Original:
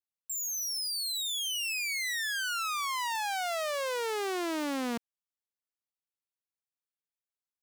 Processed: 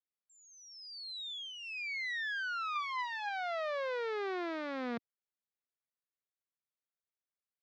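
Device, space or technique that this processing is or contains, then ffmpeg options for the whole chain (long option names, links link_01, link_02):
guitar cabinet: -filter_complex "[0:a]highpass=110,equalizer=frequency=290:width_type=q:width=4:gain=-8,equalizer=frequency=890:width_type=q:width=4:gain=-7,equalizer=frequency=2900:width_type=q:width=4:gain=-10,lowpass=frequency=3600:width=0.5412,lowpass=frequency=3600:width=1.3066,asettb=1/sr,asplit=3[link_01][link_02][link_03];[link_01]atrim=end=2.754[link_04];[link_02]atrim=start=2.75:end=3.29,asetpts=PTS-STARTPTS,afade=type=in:duration=0.004:curve=qsin,afade=type=out:start_time=0.536:duration=0.004:curve=qsin,aecho=1:1:5:0.52,atrim=end_sample=23814[link_05];[link_03]atrim=start=3.286[link_06];[link_04][link_05]acrossfade=duration=0.004:curve1=hsin:curve2=qsin[link_07];[link_07][link_06]acrossfade=duration=0.004:curve1=qsin:curve2=hsin,volume=-2dB"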